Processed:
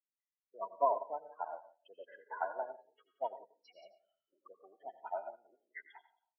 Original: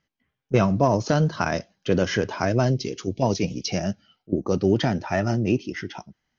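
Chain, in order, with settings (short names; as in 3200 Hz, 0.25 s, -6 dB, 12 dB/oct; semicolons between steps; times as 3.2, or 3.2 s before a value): one diode to ground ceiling -14 dBFS; treble ducked by the level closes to 1100 Hz, closed at -22 dBFS; 2.23–3.54 bell 1900 Hz +5.5 dB 0.58 oct; loudest bins only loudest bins 16; ladder high-pass 720 Hz, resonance 30%; echo 0.177 s -10.5 dB; on a send at -5 dB: reverb RT60 0.30 s, pre-delay 78 ms; on the sum: upward expander 2.5:1, over -52 dBFS; gain +7 dB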